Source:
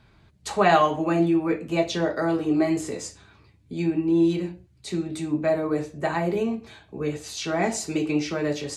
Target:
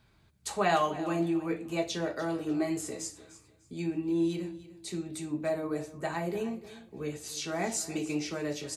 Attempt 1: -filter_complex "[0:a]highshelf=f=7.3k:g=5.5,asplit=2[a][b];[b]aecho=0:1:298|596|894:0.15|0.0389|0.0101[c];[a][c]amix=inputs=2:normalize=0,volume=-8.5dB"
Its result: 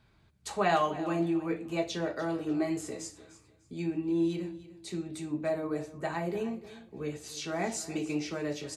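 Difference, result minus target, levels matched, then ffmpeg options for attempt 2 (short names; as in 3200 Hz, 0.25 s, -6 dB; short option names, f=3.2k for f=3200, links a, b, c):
8000 Hz band -4.0 dB
-filter_complex "[0:a]highshelf=f=7.3k:g=14,asplit=2[a][b];[b]aecho=0:1:298|596|894:0.15|0.0389|0.0101[c];[a][c]amix=inputs=2:normalize=0,volume=-8.5dB"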